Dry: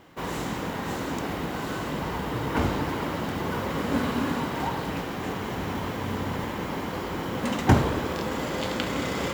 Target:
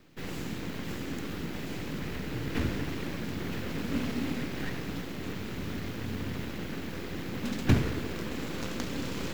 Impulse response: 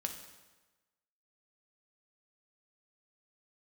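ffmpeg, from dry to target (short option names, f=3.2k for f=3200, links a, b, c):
-filter_complex "[0:a]equalizer=f=9.1k:w=2.9:g=-7.5,acrossover=split=480|5800[a][b][c];[b]aeval=exprs='abs(val(0))':c=same[d];[a][d][c]amix=inputs=3:normalize=0,volume=-4dB"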